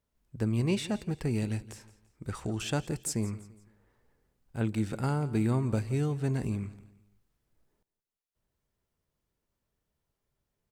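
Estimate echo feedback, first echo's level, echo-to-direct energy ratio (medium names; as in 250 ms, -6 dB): 36%, -17.5 dB, -17.0 dB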